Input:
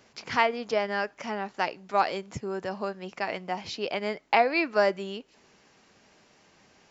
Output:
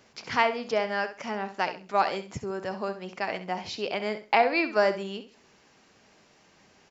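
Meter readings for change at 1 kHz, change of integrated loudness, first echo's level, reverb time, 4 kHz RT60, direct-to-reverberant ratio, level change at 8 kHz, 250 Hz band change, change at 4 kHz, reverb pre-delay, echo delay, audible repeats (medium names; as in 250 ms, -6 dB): +0.5 dB, +0.5 dB, -11.5 dB, no reverb, no reverb, no reverb, no reading, +0.5 dB, +0.5 dB, no reverb, 66 ms, 2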